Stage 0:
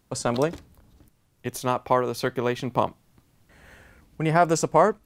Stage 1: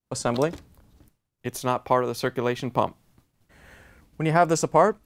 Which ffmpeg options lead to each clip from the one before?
ffmpeg -i in.wav -af "agate=range=-33dB:threshold=-54dB:ratio=3:detection=peak" out.wav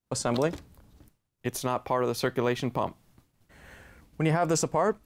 ffmpeg -i in.wav -af "alimiter=limit=-15dB:level=0:latency=1:release=18" out.wav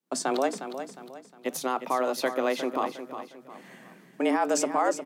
ffmpeg -i in.wav -filter_complex "[0:a]asplit=2[link_01][link_02];[link_02]aecho=0:1:358|716|1074|1432:0.316|0.117|0.0433|0.016[link_03];[link_01][link_03]amix=inputs=2:normalize=0,afreqshift=130" out.wav

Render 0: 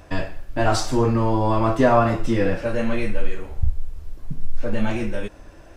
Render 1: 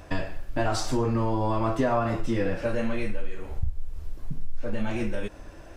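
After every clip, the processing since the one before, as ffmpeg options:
ffmpeg -i in.wav -af "acompressor=threshold=-23dB:ratio=3" out.wav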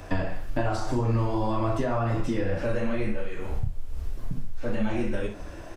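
ffmpeg -i in.wav -filter_complex "[0:a]aecho=1:1:33|61:0.422|0.282,acrossover=split=100|1700[link_01][link_02][link_03];[link_01]acompressor=threshold=-28dB:ratio=4[link_04];[link_02]acompressor=threshold=-30dB:ratio=4[link_05];[link_03]acompressor=threshold=-49dB:ratio=4[link_06];[link_04][link_05][link_06]amix=inputs=3:normalize=0,flanger=delay=7.1:depth=6.5:regen=-49:speed=1.9:shape=triangular,volume=8dB" out.wav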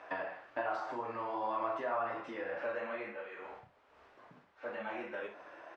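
ffmpeg -i in.wav -af "highpass=730,lowpass=2000,volume=-2dB" out.wav

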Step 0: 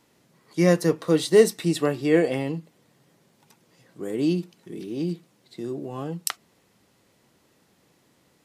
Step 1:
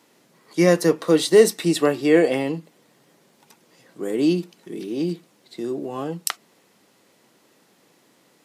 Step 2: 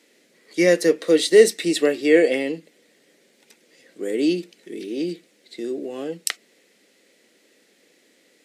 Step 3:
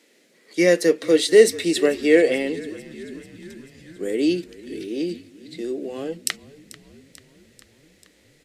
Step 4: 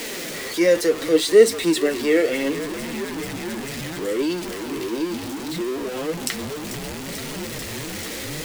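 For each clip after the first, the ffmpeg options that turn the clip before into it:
ffmpeg -i in.wav -filter_complex "[0:a]highpass=210,asplit=2[link_01][link_02];[link_02]alimiter=limit=-13dB:level=0:latency=1,volume=-2dB[link_03];[link_01][link_03]amix=inputs=2:normalize=0" out.wav
ffmpeg -i in.wav -af "equalizer=frequency=125:width_type=o:width=1:gain=-11,equalizer=frequency=250:width_type=o:width=1:gain=5,equalizer=frequency=500:width_type=o:width=1:gain=9,equalizer=frequency=1000:width_type=o:width=1:gain=-11,equalizer=frequency=2000:width_type=o:width=1:gain=11,equalizer=frequency=4000:width_type=o:width=1:gain=5,equalizer=frequency=8000:width_type=o:width=1:gain=6,volume=-6dB" out.wav
ffmpeg -i in.wav -filter_complex "[0:a]asplit=7[link_01][link_02][link_03][link_04][link_05][link_06][link_07];[link_02]adelay=440,afreqshift=-40,volume=-19dB[link_08];[link_03]adelay=880,afreqshift=-80,volume=-22.7dB[link_09];[link_04]adelay=1320,afreqshift=-120,volume=-26.5dB[link_10];[link_05]adelay=1760,afreqshift=-160,volume=-30.2dB[link_11];[link_06]adelay=2200,afreqshift=-200,volume=-34dB[link_12];[link_07]adelay=2640,afreqshift=-240,volume=-37.7dB[link_13];[link_01][link_08][link_09][link_10][link_11][link_12][link_13]amix=inputs=7:normalize=0" out.wav
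ffmpeg -i in.wav -af "aeval=exprs='val(0)+0.5*0.0891*sgn(val(0))':channel_layout=same,flanger=delay=4.1:depth=5.5:regen=51:speed=0.69:shape=triangular" out.wav

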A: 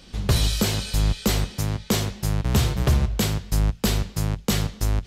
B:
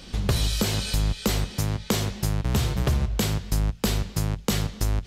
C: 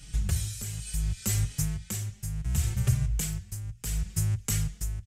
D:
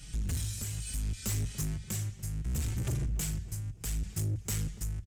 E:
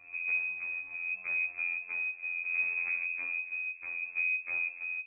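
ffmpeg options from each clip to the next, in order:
ffmpeg -i in.wav -af "acompressor=threshold=-28dB:ratio=2.5,volume=4.5dB" out.wav
ffmpeg -i in.wav -filter_complex "[0:a]equalizer=frequency=125:width_type=o:width=1:gain=6,equalizer=frequency=250:width_type=o:width=1:gain=-12,equalizer=frequency=500:width_type=o:width=1:gain=-11,equalizer=frequency=1000:width_type=o:width=1:gain=-11,equalizer=frequency=4000:width_type=o:width=1:gain=-11,equalizer=frequency=8000:width_type=o:width=1:gain=9,tremolo=f=0.69:d=0.67,asplit=2[link_01][link_02];[link_02]adelay=4.4,afreqshift=1.3[link_03];[link_01][link_03]amix=inputs=2:normalize=1,volume=1.5dB" out.wav
ffmpeg -i in.wav -filter_complex "[0:a]asoftclip=type=tanh:threshold=-28.5dB,asplit=2[link_01][link_02];[link_02]adelay=289,lowpass=frequency=860:poles=1,volume=-13.5dB,asplit=2[link_03][link_04];[link_04]adelay=289,lowpass=frequency=860:poles=1,volume=0.47,asplit=2[link_05][link_06];[link_06]adelay=289,lowpass=frequency=860:poles=1,volume=0.47,asplit=2[link_07][link_08];[link_08]adelay=289,lowpass=frequency=860:poles=1,volume=0.47,asplit=2[link_09][link_10];[link_10]adelay=289,lowpass=frequency=860:poles=1,volume=0.47[link_11];[link_01][link_03][link_05][link_07][link_09][link_11]amix=inputs=6:normalize=0" out.wav
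ffmpeg -i in.wav -af "afftfilt=real='hypot(re,im)*cos(PI*b)':imag='0':win_size=2048:overlap=0.75,lowpass=frequency=2200:width_type=q:width=0.5098,lowpass=frequency=2200:width_type=q:width=0.6013,lowpass=frequency=2200:width_type=q:width=0.9,lowpass=frequency=2200:width_type=q:width=2.563,afreqshift=-2600,aemphasis=mode=production:type=75fm,volume=1dB" out.wav

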